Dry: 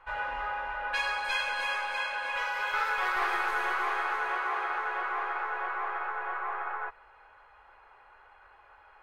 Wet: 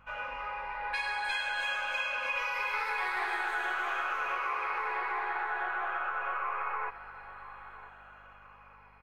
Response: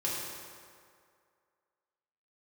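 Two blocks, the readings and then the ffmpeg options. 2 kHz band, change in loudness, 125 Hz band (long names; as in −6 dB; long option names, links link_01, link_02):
−1.5 dB, −1.5 dB, can't be measured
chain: -filter_complex "[0:a]afftfilt=real='re*pow(10,7/40*sin(2*PI*(0.88*log(max(b,1)*sr/1024/100)/log(2)-(-0.48)*(pts-256)/sr)))':imag='im*pow(10,7/40*sin(2*PI*(0.88*log(max(b,1)*sr/1024/100)/log(2)-(-0.48)*(pts-256)/sr)))':win_size=1024:overlap=0.75,acrossover=split=310|2200[link_01][link_02][link_03];[link_01]alimiter=level_in=21dB:limit=-24dB:level=0:latency=1:release=188,volume=-21dB[link_04];[link_04][link_02][link_03]amix=inputs=3:normalize=0,dynaudnorm=framelen=340:gausssize=7:maxgain=7dB,equalizer=frequency=2400:width_type=o:width=0.29:gain=6,bandreject=frequency=396.8:width_type=h:width=4,bandreject=frequency=793.6:width_type=h:width=4,bandreject=frequency=1190.4:width_type=h:width=4,bandreject=frequency=1587.2:width_type=h:width=4,bandreject=frequency=1984:width_type=h:width=4,bandreject=frequency=2380.8:width_type=h:width=4,bandreject=frequency=2777.6:width_type=h:width=4,bandreject=frequency=3174.4:width_type=h:width=4,bandreject=frequency=3571.2:width_type=h:width=4,bandreject=frequency=3968:width_type=h:width=4,bandreject=frequency=4364.8:width_type=h:width=4,bandreject=frequency=4761.6:width_type=h:width=4,bandreject=frequency=5158.4:width_type=h:width=4,bandreject=frequency=5555.2:width_type=h:width=4,bandreject=frequency=5952:width_type=h:width=4,asplit=2[link_05][link_06];[link_06]adelay=998,lowpass=frequency=3600:poles=1,volume=-18dB,asplit=2[link_07][link_08];[link_08]adelay=998,lowpass=frequency=3600:poles=1,volume=0.36,asplit=2[link_09][link_10];[link_10]adelay=998,lowpass=frequency=3600:poles=1,volume=0.36[link_11];[link_07][link_09][link_11]amix=inputs=3:normalize=0[link_12];[link_05][link_12]amix=inputs=2:normalize=0,aeval=exprs='val(0)+0.00126*(sin(2*PI*50*n/s)+sin(2*PI*2*50*n/s)/2+sin(2*PI*3*50*n/s)/3+sin(2*PI*4*50*n/s)/4+sin(2*PI*5*50*n/s)/5)':channel_layout=same,acompressor=threshold=-26dB:ratio=4,volume=-4.5dB"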